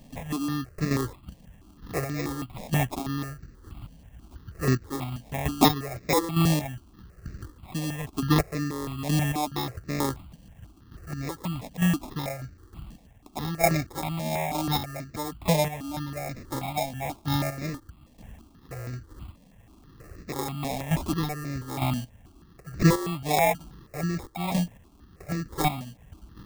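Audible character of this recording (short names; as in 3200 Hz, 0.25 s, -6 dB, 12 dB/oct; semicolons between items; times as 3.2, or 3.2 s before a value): chopped level 1.1 Hz, depth 60%, duty 25%; aliases and images of a low sample rate 1500 Hz, jitter 0%; notches that jump at a steady rate 6.2 Hz 360–3200 Hz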